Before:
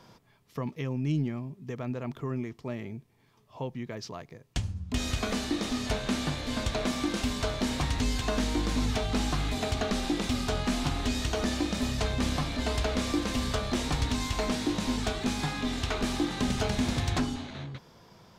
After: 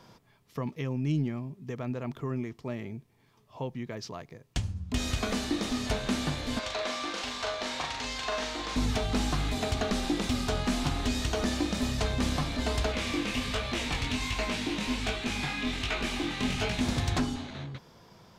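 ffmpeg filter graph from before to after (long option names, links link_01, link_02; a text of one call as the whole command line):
ffmpeg -i in.wav -filter_complex "[0:a]asettb=1/sr,asplit=3[link_01][link_02][link_03];[link_01]atrim=end=6.594[link_04];[link_02]atrim=start=6.59:end=8.76,asetpts=PTS-STARTPTS,afade=type=in:duration=0.004:curve=qsin,afade=type=out:start_time=2.166:duration=0.004:curve=qsin,acrossover=split=470 6900:gain=0.112 1 0.2[link_05][link_06][link_07];[link_05][link_06][link_07]amix=inputs=3:normalize=0,asplit=2[link_08][link_09];[link_09]adelay=40,volume=-4dB[link_10];[link_08][link_10]amix=inputs=2:normalize=0,atrim=end_sample=95697[link_11];[link_03]atrim=start=8.756[link_12];[link_04][link_11]acrossfade=duration=0.004:curve1=hsin:curve2=qsin[link_13];[link_13][link_12]acrossfade=duration=0.004:curve1=qsin:curve2=hsin,asettb=1/sr,asplit=3[link_14][link_15][link_16];[link_14]atrim=end=12.924[link_17];[link_15]atrim=start=12.92:end=16.81,asetpts=PTS-STARTPTS,afade=type=in:duration=0.004:curve=qsin,afade=type=out:start_time=3.886:duration=0.004:curve=qsin,equalizer=frequency=2500:width=1.5:gain=9.5,flanger=delay=17:depth=7.6:speed=1.3[link_18];[link_16]atrim=start=16.806[link_19];[link_17][link_18]acrossfade=duration=0.004:curve1=hsin:curve2=qsin[link_20];[link_20][link_19]acrossfade=duration=0.004:curve1=qsin:curve2=hsin" out.wav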